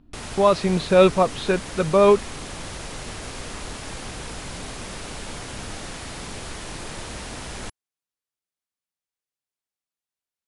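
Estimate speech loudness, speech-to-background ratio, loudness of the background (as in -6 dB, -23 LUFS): -19.0 LUFS, 15.5 dB, -34.5 LUFS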